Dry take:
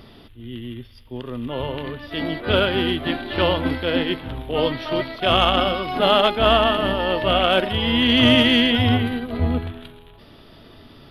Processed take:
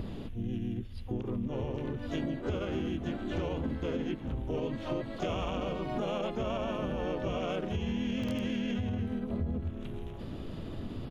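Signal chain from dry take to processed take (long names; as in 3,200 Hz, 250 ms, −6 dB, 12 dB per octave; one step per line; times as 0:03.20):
pitch-shifted copies added −3 semitones −2 dB, +12 semitones −14 dB
wrap-around overflow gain 1 dB
tilt shelving filter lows +7.5 dB, about 640 Hz
brickwall limiter −7.5 dBFS, peak gain reduction 8.5 dB
downward compressor 6 to 1, threshold −32 dBFS, peak gain reduction 19 dB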